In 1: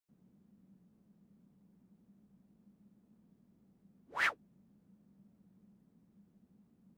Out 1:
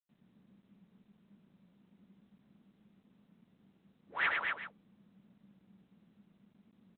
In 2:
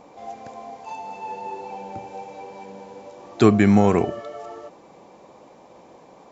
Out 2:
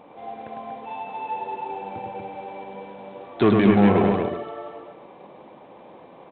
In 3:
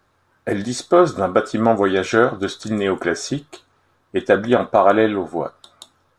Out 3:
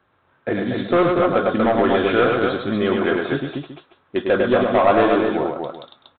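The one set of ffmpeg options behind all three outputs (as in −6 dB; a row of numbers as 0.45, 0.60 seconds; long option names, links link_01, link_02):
-af "highpass=frequency=85:poles=1,aresample=11025,asoftclip=type=tanh:threshold=-10dB,aresample=44100,aecho=1:1:103|238|380:0.668|0.631|0.2" -ar 8000 -c:a adpcm_g726 -b:a 32k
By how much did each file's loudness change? 0.0, −1.5, 0.0 LU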